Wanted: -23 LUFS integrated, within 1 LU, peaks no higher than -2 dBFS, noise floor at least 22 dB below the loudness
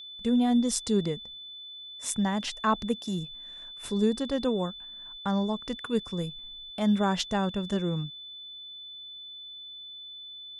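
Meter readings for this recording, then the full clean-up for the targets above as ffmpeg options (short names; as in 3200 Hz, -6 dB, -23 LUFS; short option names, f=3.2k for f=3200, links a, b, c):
steady tone 3500 Hz; tone level -41 dBFS; loudness -29.0 LUFS; peak -11.5 dBFS; loudness target -23.0 LUFS
-> -af "bandreject=f=3.5k:w=30"
-af "volume=6dB"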